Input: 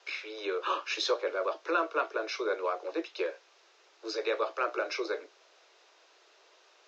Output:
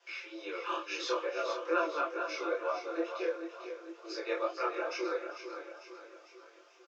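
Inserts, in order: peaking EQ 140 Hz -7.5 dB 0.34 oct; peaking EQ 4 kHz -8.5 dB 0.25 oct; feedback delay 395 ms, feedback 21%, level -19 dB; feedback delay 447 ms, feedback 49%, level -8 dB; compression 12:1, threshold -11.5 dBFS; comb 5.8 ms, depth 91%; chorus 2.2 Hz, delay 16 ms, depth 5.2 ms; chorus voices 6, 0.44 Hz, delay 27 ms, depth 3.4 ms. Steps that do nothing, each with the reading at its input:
peaking EQ 140 Hz: input has nothing below 270 Hz; compression, threshold -11.5 dBFS: peak at its input -15.5 dBFS

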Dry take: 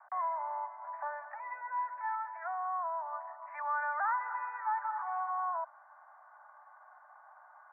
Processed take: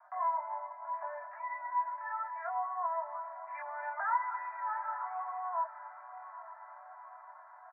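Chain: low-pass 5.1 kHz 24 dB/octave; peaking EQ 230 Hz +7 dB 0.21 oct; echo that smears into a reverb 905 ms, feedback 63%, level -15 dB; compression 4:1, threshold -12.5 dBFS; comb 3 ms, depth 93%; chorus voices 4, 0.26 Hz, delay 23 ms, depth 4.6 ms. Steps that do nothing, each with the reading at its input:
low-pass 5.1 kHz: input has nothing above 2 kHz; peaking EQ 230 Hz: input has nothing below 570 Hz; compression, threshold -12.5 dBFS: peak at its input -22.5 dBFS

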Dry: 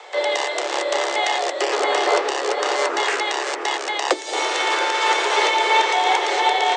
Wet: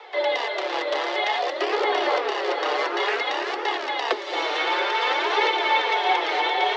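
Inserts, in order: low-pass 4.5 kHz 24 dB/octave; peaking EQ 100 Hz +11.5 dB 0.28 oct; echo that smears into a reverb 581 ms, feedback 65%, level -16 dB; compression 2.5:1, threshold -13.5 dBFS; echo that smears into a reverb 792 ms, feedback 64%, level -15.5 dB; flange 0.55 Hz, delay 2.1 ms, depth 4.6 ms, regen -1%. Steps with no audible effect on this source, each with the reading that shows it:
peaking EQ 100 Hz: input has nothing below 270 Hz

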